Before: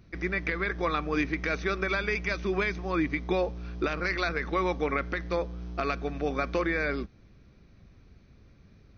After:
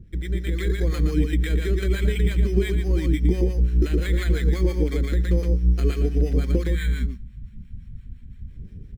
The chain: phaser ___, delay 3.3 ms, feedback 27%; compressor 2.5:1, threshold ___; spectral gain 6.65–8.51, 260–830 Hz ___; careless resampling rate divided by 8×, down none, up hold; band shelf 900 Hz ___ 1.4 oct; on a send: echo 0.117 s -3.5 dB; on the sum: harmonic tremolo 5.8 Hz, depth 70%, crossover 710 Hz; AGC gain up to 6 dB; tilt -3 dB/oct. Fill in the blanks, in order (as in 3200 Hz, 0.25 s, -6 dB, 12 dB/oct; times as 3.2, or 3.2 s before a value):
0.92 Hz, -31 dBFS, -17 dB, -13.5 dB